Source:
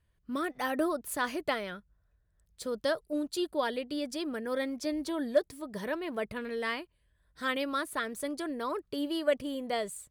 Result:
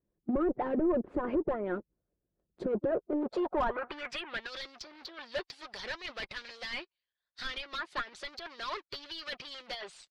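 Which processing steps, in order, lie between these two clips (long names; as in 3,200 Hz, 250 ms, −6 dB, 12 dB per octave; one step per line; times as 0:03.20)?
low-shelf EQ 97 Hz +4.5 dB
leveller curve on the samples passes 3
comb filter 5.6 ms, depth 39%
in parallel at −4 dB: wave folding −29 dBFS
on the sum: band-pass filter sweep 330 Hz → 4,600 Hz, 0:03.06–0:04.49
harmonic and percussive parts rebalanced harmonic −15 dB
treble cut that deepens with the level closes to 1,400 Hz, closed at −33 dBFS
mid-hump overdrive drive 19 dB, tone 4,400 Hz, clips at −19 dBFS
spectral tilt −4 dB per octave
brickwall limiter −22 dBFS, peak gain reduction 9 dB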